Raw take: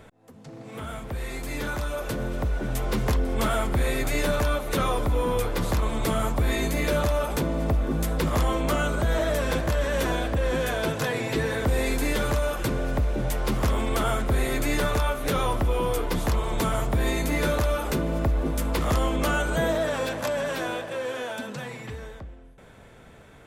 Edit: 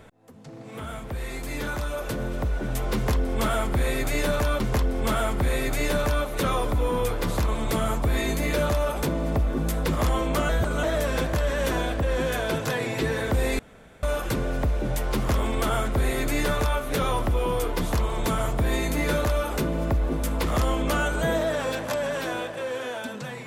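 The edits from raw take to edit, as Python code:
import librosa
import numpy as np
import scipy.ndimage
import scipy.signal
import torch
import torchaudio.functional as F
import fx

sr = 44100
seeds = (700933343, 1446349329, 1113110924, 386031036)

y = fx.edit(x, sr, fx.repeat(start_s=2.94, length_s=1.66, count=2),
    fx.reverse_span(start_s=8.83, length_s=0.34),
    fx.room_tone_fill(start_s=11.93, length_s=0.44), tone=tone)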